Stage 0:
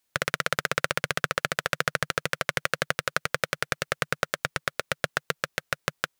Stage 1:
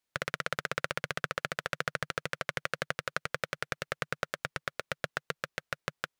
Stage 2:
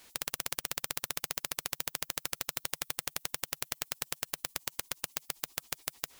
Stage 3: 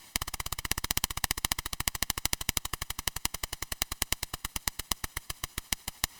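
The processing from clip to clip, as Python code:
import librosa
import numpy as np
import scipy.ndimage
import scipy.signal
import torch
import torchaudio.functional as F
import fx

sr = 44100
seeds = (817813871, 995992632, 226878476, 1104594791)

y1 = fx.high_shelf(x, sr, hz=6700.0, db=-7.5)
y1 = y1 * 10.0 ** (-6.5 / 20.0)
y2 = fx.quant_float(y1, sr, bits=4)
y2 = fx.spectral_comp(y2, sr, ratio=10.0)
y2 = y2 * 10.0 ** (4.0 / 20.0)
y3 = fx.lower_of_two(y2, sr, delay_ms=1.0)
y3 = np.repeat(y3[::2], 2)[:len(y3)]
y3 = y3 * 10.0 ** (6.5 / 20.0)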